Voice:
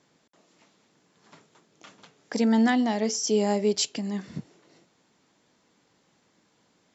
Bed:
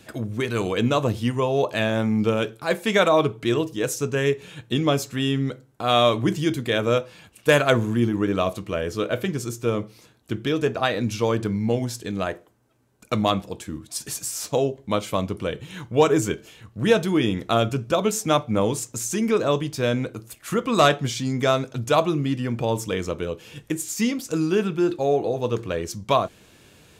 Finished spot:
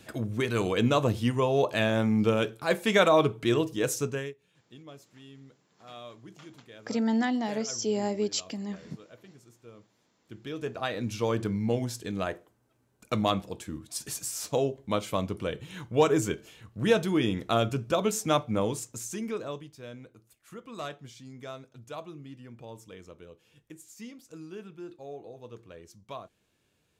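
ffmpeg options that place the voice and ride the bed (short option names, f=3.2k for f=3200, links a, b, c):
-filter_complex "[0:a]adelay=4550,volume=-5dB[a];[1:a]volume=19dB,afade=t=out:st=3.98:d=0.35:silence=0.0630957,afade=t=in:st=10.13:d=1.27:silence=0.0794328,afade=t=out:st=18.39:d=1.34:silence=0.158489[b];[a][b]amix=inputs=2:normalize=0"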